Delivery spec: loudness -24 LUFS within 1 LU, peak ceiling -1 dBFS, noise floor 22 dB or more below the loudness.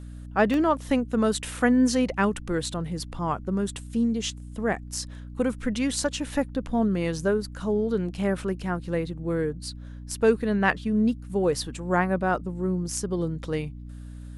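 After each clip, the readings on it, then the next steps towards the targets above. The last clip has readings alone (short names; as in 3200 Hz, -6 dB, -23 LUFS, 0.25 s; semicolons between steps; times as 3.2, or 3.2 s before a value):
dropouts 1; longest dropout 1.4 ms; hum 60 Hz; harmonics up to 300 Hz; hum level -37 dBFS; loudness -26.5 LUFS; peak -8.0 dBFS; loudness target -24.0 LUFS
-> interpolate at 0.54, 1.4 ms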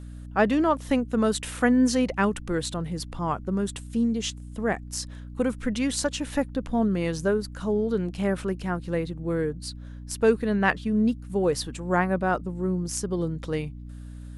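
dropouts 0; hum 60 Hz; harmonics up to 300 Hz; hum level -37 dBFS
-> de-hum 60 Hz, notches 5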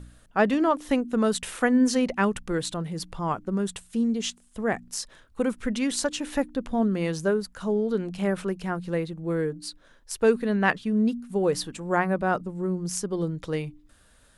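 hum none; loudness -26.5 LUFS; peak -8.0 dBFS; loudness target -24.0 LUFS
-> gain +2.5 dB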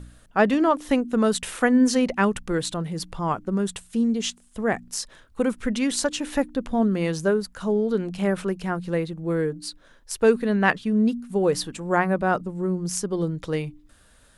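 loudness -24.0 LUFS; peak -5.5 dBFS; noise floor -56 dBFS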